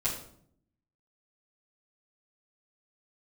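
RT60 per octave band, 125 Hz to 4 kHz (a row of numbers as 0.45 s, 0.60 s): 0.95 s, 0.95 s, 0.70 s, 0.60 s, 0.45 s, 0.45 s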